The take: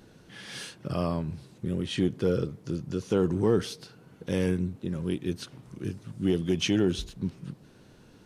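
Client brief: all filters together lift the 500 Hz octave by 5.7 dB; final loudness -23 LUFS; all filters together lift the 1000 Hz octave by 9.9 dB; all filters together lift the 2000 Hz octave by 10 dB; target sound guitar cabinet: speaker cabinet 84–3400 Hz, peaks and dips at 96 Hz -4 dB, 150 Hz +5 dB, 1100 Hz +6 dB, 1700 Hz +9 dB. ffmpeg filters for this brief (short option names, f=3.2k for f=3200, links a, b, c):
-af "highpass=84,equalizer=f=96:t=q:w=4:g=-4,equalizer=f=150:t=q:w=4:g=5,equalizer=f=1.1k:t=q:w=4:g=6,equalizer=f=1.7k:t=q:w=4:g=9,lowpass=f=3.4k:w=0.5412,lowpass=f=3.4k:w=1.3066,equalizer=f=500:t=o:g=6,equalizer=f=1k:t=o:g=4.5,equalizer=f=2k:t=o:g=4,volume=3dB"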